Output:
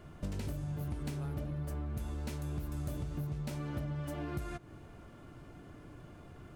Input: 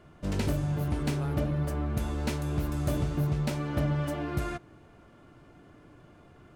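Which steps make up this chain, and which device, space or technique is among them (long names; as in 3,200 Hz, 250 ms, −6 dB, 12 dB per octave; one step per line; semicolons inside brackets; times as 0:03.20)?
ASMR close-microphone chain (low-shelf EQ 150 Hz +6.5 dB; downward compressor 6 to 1, threshold −36 dBFS, peak gain reduction 15 dB; high-shelf EQ 7,600 Hz +7 dB)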